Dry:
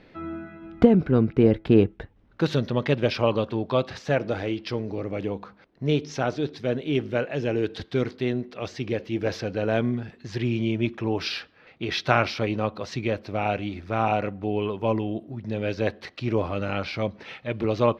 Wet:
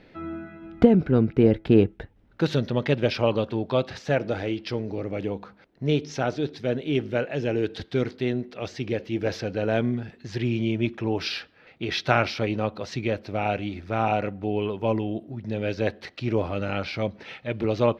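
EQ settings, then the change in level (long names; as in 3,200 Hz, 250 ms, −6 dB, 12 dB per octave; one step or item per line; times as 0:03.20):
parametric band 1,100 Hz −5 dB 0.24 octaves
0.0 dB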